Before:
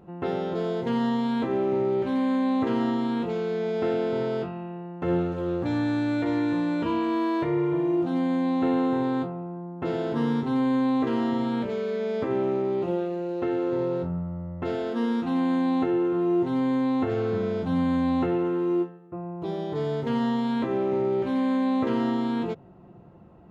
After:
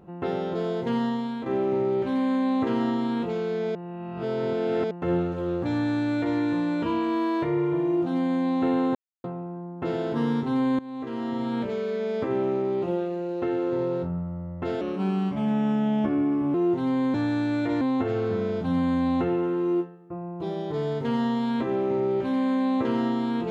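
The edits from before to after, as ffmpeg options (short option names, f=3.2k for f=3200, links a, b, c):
-filter_complex "[0:a]asplit=11[a][b][c][d][e][f][g][h][i][j][k];[a]atrim=end=1.46,asetpts=PTS-STARTPTS,afade=t=out:st=0.95:d=0.51:silence=0.375837[l];[b]atrim=start=1.46:end=3.752,asetpts=PTS-STARTPTS,afade=t=in:d=0.004:c=hsin:silence=0.375837[m];[c]atrim=start=3.748:end=4.912,asetpts=PTS-STARTPTS,areverse[n];[d]atrim=start=4.908:end=8.95,asetpts=PTS-STARTPTS,afade=t=out:st=4.038:d=0.004:c=hsin[o];[e]atrim=start=8.95:end=9.24,asetpts=PTS-STARTPTS,volume=0[p];[f]atrim=start=9.24:end=10.79,asetpts=PTS-STARTPTS,afade=t=in:d=0.004:c=hsin,afade=t=out:st=1.546:d=0.004:c=hsin:silence=0.105925[q];[g]atrim=start=10.79:end=14.814,asetpts=PTS-STARTPTS,afade=t=in:d=0.85:silence=0.105925[r];[h]atrim=start=14.81:end=16.23,asetpts=PTS-STARTPTS,asetrate=36162,aresample=44100,atrim=end_sample=76368,asetpts=PTS-STARTPTS[s];[i]atrim=start=16.226:end=16.832[t];[j]atrim=start=5.708:end=6.382[u];[k]atrim=start=16.828[v];[l][m]concat=n=2:v=0:a=1[w];[w][n]acrossfade=d=0.004:c1=hsin:c2=hsin[x];[o][p][q][r]concat=n=4:v=0:a=1[y];[x][y]acrossfade=d=0.004:c1=hsin:c2=hsin[z];[z][s]acrossfade=d=0.004:c1=hsin:c2=hsin[aa];[aa][t]acrossfade=d=0.004:c1=hsin:c2=hsin[ab];[ab][u]acrossfade=d=0.004:c1=hsin:c2=hsin[ac];[ac][v]acrossfade=d=0.004:c1=hsin:c2=hsin"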